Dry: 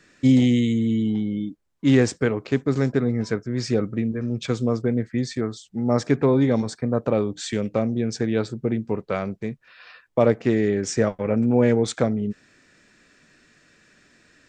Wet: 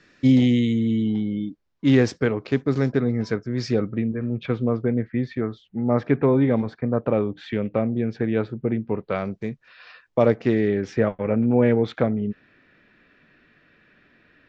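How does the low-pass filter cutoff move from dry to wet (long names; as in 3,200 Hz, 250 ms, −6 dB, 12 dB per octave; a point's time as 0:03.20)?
low-pass filter 24 dB per octave
0:03.67 5,600 Hz
0:04.16 3,000 Hz
0:08.92 3,000 Hz
0:09.37 6,600 Hz
0:10.25 6,600 Hz
0:11.03 3,300 Hz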